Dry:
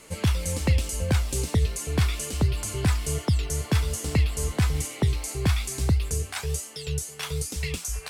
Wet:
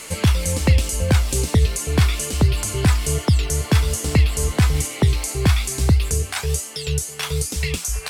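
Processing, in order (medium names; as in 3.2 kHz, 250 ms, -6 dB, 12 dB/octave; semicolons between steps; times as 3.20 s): tape noise reduction on one side only encoder only; trim +6.5 dB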